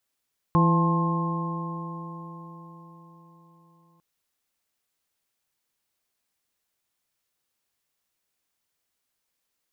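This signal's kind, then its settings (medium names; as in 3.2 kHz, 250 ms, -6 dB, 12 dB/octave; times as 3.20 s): stretched partials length 3.45 s, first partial 166 Hz, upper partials -8/-13/-19.5/-11/-3.5 dB, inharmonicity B 0.0038, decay 4.74 s, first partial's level -17.5 dB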